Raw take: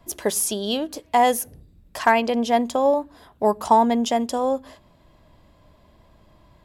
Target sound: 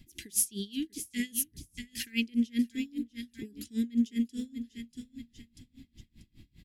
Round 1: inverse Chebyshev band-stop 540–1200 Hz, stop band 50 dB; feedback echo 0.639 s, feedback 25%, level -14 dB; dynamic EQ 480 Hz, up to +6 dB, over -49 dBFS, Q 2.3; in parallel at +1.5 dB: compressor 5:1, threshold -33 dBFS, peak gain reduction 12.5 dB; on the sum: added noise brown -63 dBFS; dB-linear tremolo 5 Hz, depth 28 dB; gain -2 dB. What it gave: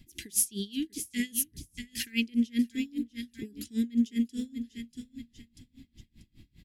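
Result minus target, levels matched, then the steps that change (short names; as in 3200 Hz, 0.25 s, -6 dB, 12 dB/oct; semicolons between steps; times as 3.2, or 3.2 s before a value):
compressor: peak gain reduction -7 dB
change: compressor 5:1, threshold -41.5 dBFS, peak gain reduction 19 dB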